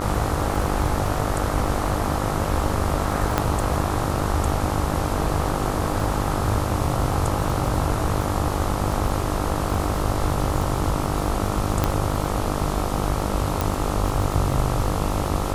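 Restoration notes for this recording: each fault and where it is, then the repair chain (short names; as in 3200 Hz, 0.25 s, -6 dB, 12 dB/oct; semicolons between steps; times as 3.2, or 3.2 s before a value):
buzz 50 Hz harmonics 27 -27 dBFS
crackle 31/s -27 dBFS
3.38 pop -5 dBFS
11.84 pop -5 dBFS
13.61 pop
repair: de-click; de-hum 50 Hz, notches 27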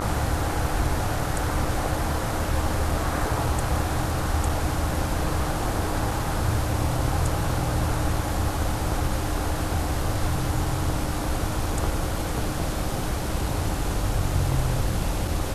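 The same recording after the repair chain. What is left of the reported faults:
none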